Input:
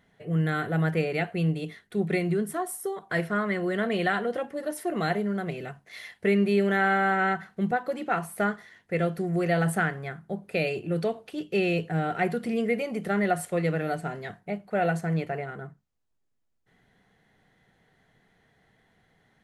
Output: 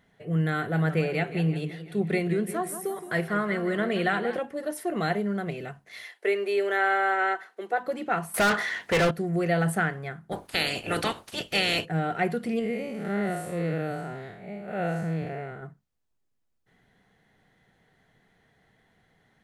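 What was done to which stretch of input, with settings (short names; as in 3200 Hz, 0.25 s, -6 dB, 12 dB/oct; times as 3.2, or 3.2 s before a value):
0.56–4.39 warbling echo 0.171 s, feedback 52%, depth 145 cents, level -12 dB
6.04–7.78 steep high-pass 330 Hz
8.34–9.11 overdrive pedal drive 29 dB, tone 5900 Hz, clips at -15.5 dBFS
10.31–11.84 spectral limiter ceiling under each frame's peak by 28 dB
12.59–15.63 time blur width 0.159 s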